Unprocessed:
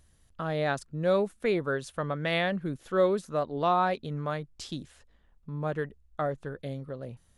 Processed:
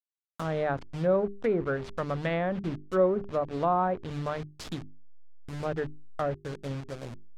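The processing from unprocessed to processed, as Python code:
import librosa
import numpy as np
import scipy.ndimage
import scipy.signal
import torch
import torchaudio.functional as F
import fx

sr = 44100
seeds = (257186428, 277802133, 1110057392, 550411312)

y = fx.delta_hold(x, sr, step_db=-36.0)
y = fx.low_shelf(y, sr, hz=300.0, db=3.5)
y = fx.hum_notches(y, sr, base_hz=50, count=8)
y = fx.env_lowpass_down(y, sr, base_hz=1200.0, full_db=-22.5)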